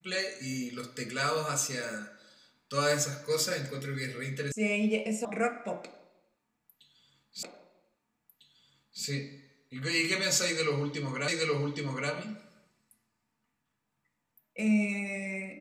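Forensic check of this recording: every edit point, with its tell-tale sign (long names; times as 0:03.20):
0:04.52: cut off before it has died away
0:05.25: cut off before it has died away
0:07.43: the same again, the last 1.6 s
0:11.28: the same again, the last 0.82 s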